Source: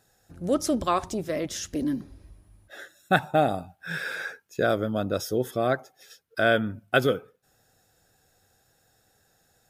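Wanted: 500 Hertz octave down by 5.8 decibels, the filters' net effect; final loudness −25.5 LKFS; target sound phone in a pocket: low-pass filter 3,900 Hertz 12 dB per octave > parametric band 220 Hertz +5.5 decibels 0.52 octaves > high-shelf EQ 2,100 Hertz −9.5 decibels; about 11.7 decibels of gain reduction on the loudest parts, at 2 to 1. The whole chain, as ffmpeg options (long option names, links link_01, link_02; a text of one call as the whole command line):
ffmpeg -i in.wav -af "equalizer=frequency=500:width_type=o:gain=-7,acompressor=threshold=-40dB:ratio=2,lowpass=3900,equalizer=frequency=220:width_type=o:width=0.52:gain=5.5,highshelf=frequency=2100:gain=-9.5,volume=13dB" out.wav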